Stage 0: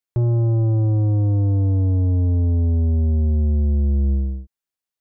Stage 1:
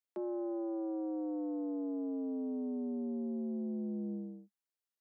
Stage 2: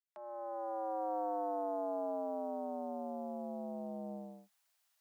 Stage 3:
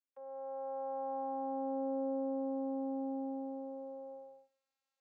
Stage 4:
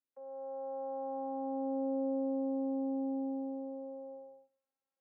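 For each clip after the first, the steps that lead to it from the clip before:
steep high-pass 200 Hz 96 dB/oct; gain -8 dB
opening faded in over 1.17 s; EQ curve 140 Hz 0 dB, 210 Hz -13 dB, 390 Hz -17 dB, 640 Hz +10 dB; gain +6 dB
vocoder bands 16, saw 269 Hz; Schroeder reverb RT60 0.53 s, combs from 29 ms, DRR 14.5 dB; gain +1 dB
band-pass 280 Hz, Q 0.63; gain +3.5 dB

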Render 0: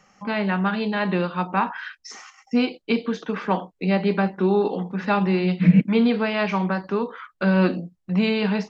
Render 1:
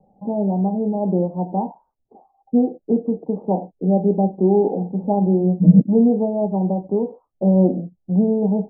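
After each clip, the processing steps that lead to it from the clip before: steep low-pass 820 Hz 72 dB/oct; gain +4 dB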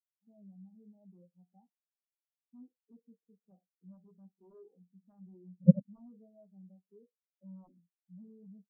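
added harmonics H 3 -7 dB, 7 -31 dB, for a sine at -1 dBFS; spectral expander 2.5:1; gain -9 dB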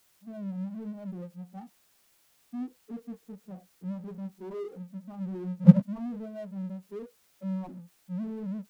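power-law curve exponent 0.7; gain +5 dB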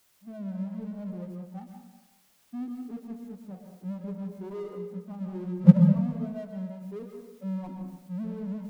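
reverb RT60 0.95 s, pre-delay 0.117 s, DRR 4 dB

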